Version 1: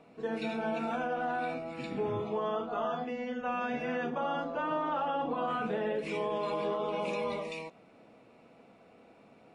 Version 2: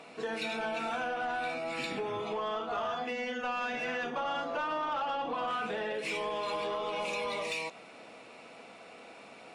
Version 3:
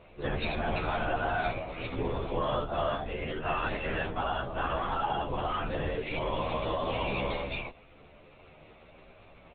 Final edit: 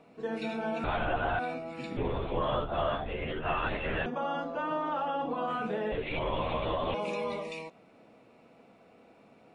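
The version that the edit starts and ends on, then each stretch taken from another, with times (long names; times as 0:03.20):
1
0:00.84–0:01.39: punch in from 3
0:01.97–0:04.06: punch in from 3
0:05.92–0:06.94: punch in from 3
not used: 2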